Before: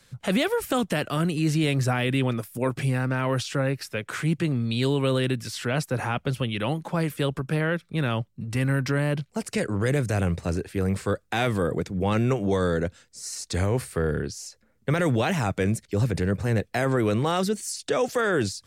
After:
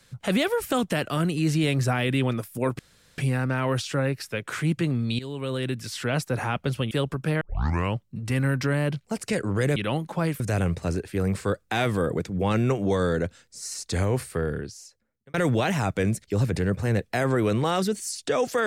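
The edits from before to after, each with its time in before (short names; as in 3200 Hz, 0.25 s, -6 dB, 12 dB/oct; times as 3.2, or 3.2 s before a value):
2.79 insert room tone 0.39 s
4.8–5.58 fade in, from -15.5 dB
6.52–7.16 move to 10.01
7.66 tape start 0.54 s
13.81–14.95 fade out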